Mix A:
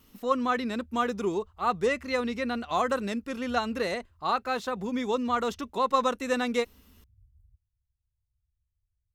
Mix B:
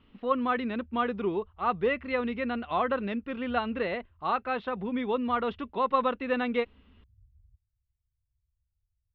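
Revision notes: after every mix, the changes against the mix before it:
speech: add resonant low-pass 3.2 kHz, resonance Q 2; master: add distance through air 390 m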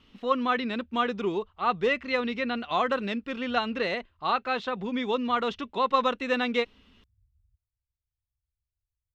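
background -8.0 dB; master: remove distance through air 390 m

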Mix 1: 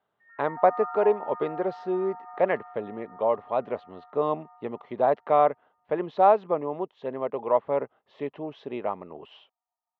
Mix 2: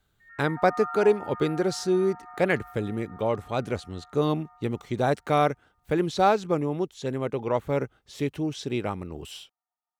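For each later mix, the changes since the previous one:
master: remove cabinet simulation 310–2500 Hz, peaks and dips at 320 Hz -6 dB, 640 Hz +6 dB, 1 kHz +6 dB, 1.5 kHz -8 dB, 2.3 kHz -7 dB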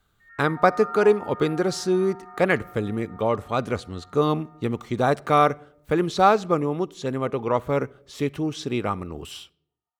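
speech: add peaking EQ 1.2 kHz +7 dB 0.36 oct; reverb: on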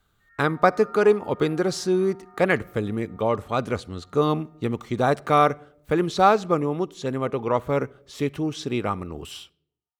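background -8.5 dB

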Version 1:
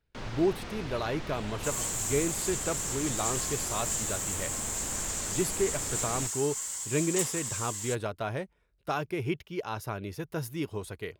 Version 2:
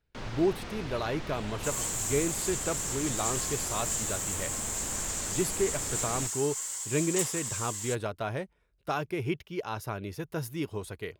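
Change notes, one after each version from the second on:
second sound: add high-pass 310 Hz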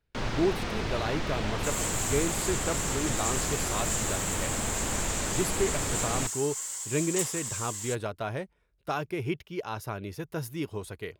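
first sound +7.5 dB

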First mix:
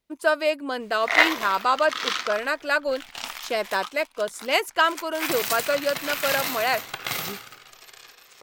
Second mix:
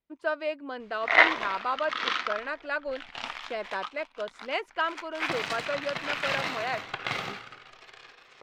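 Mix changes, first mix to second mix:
speech -8.0 dB; master: add low-pass 3.1 kHz 12 dB/octave

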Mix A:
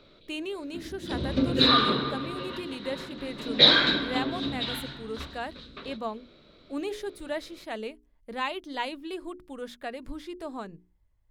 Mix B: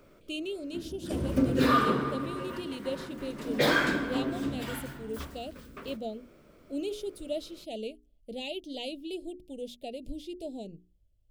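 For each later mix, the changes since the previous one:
speech: add Chebyshev band-stop 640–2800 Hz, order 3; background: remove resonant low-pass 3.9 kHz, resonance Q 14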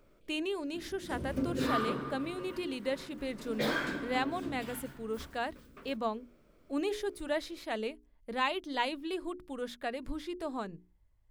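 speech: remove Chebyshev band-stop 640–2800 Hz, order 3; background -8.0 dB

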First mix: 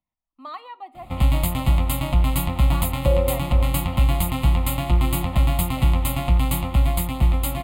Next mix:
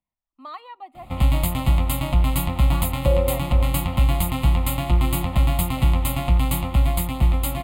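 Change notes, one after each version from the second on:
speech: send -10.5 dB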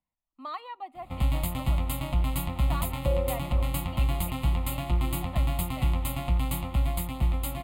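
background -7.5 dB

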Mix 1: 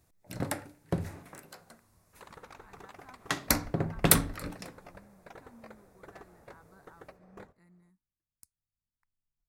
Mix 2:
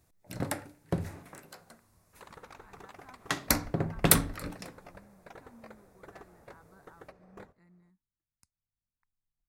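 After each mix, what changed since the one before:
speech: add distance through air 72 m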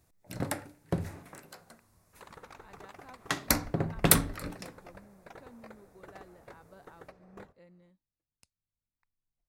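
speech: remove static phaser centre 1.3 kHz, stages 4

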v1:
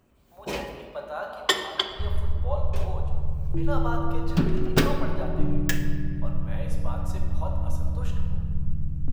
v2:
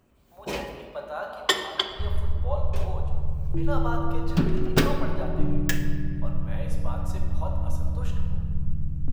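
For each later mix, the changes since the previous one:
no change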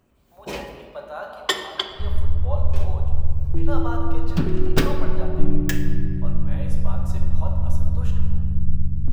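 second sound: send on

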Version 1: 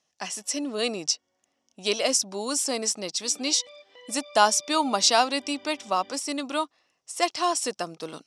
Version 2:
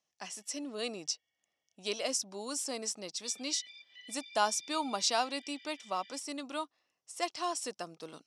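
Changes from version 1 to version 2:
speech -10.0 dB; background: add steep high-pass 1.7 kHz 96 dB/octave

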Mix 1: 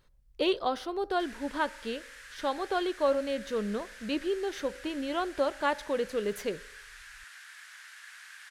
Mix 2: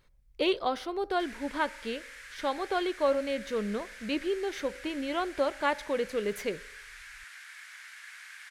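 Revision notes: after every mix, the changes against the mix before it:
master: add peaking EQ 2.2 kHz +7 dB 0.27 oct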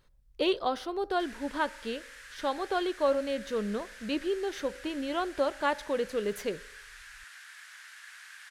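master: add peaking EQ 2.2 kHz -7 dB 0.27 oct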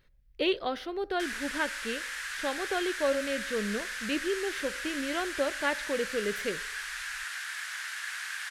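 speech: add ten-band graphic EQ 1 kHz -7 dB, 2 kHz +7 dB, 8 kHz -7 dB; background +12.0 dB

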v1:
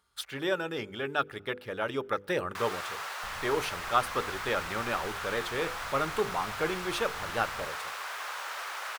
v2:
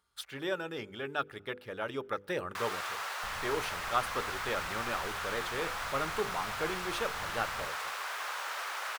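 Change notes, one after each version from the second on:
speech -4.5 dB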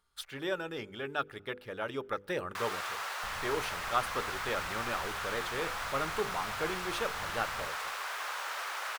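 speech: remove high-pass 48 Hz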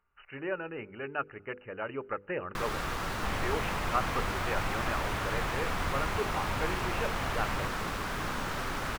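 speech: add brick-wall FIR low-pass 3 kHz; first sound: remove Bessel high-pass 840 Hz, order 6; second sound +12.0 dB

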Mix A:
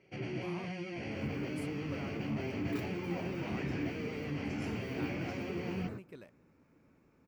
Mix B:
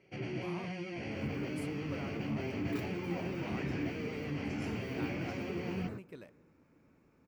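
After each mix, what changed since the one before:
speech: send +11.5 dB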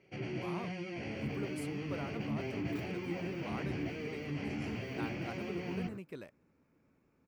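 speech +5.0 dB; second sound -4.5 dB; reverb: off

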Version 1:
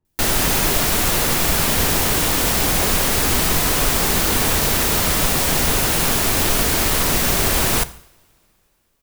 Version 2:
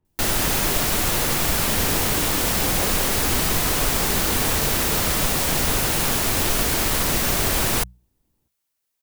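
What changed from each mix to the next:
speech +3.5 dB; reverb: off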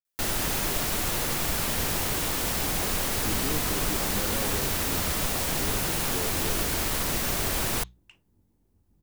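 speech: entry +1.55 s; background -6.5 dB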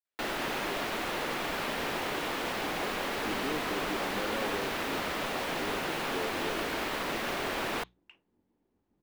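master: add three-band isolator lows -18 dB, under 220 Hz, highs -18 dB, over 3.7 kHz

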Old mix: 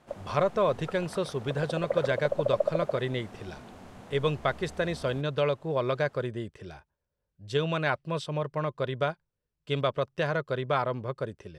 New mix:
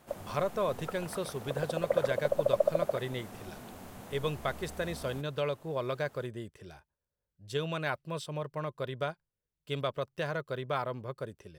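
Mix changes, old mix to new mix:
speech -6.0 dB; master: remove distance through air 67 m

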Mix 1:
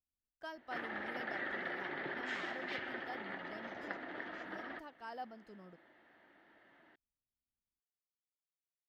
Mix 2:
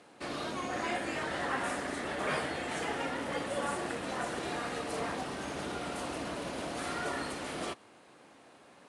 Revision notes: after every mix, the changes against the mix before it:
first sound: unmuted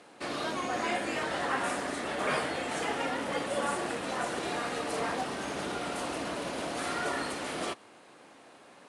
speech +7.5 dB; first sound +3.5 dB; master: add bass shelf 140 Hz -7.5 dB

